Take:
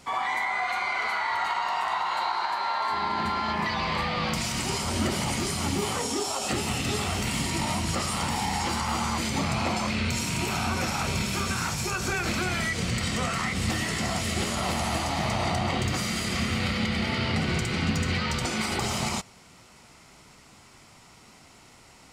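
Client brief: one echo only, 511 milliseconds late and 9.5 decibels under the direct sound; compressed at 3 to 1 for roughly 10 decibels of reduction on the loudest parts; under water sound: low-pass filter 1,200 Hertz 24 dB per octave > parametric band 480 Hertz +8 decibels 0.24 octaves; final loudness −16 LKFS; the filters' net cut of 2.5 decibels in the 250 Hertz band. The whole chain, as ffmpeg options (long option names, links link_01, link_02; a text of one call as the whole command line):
ffmpeg -i in.wav -af "equalizer=frequency=250:width_type=o:gain=-3.5,acompressor=threshold=-38dB:ratio=3,lowpass=frequency=1200:width=0.5412,lowpass=frequency=1200:width=1.3066,equalizer=frequency=480:width_type=o:width=0.24:gain=8,aecho=1:1:511:0.335,volume=24dB" out.wav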